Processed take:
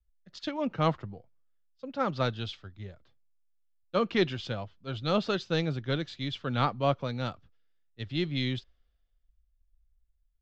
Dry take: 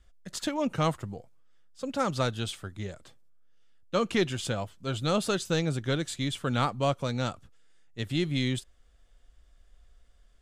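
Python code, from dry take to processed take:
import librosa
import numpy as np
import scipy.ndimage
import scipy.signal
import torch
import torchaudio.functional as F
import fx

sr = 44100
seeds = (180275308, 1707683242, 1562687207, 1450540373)

y = scipy.signal.sosfilt(scipy.signal.cheby2(4, 40, 8900.0, 'lowpass', fs=sr, output='sos'), x)
y = fx.band_widen(y, sr, depth_pct=70)
y = F.gain(torch.from_numpy(y), -2.0).numpy()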